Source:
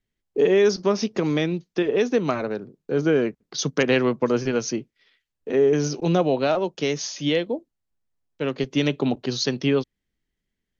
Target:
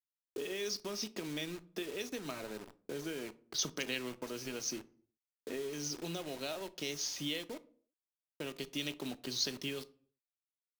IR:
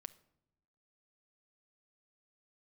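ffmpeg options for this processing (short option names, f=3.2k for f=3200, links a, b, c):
-filter_complex "[0:a]acrossover=split=2700[a][b];[a]acompressor=threshold=-34dB:ratio=6[c];[c][b]amix=inputs=2:normalize=0,acrusher=bits=6:mix=0:aa=0.000001[d];[1:a]atrim=start_sample=2205,asetrate=88200,aresample=44100[e];[d][e]afir=irnorm=-1:irlink=0,volume=5.5dB"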